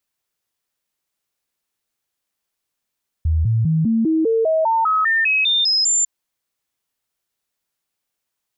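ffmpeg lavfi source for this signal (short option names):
-f lavfi -i "aevalsrc='0.2*clip(min(mod(t,0.2),0.2-mod(t,0.2))/0.005,0,1)*sin(2*PI*79.8*pow(2,floor(t/0.2)/2)*mod(t,0.2))':d=2.8:s=44100"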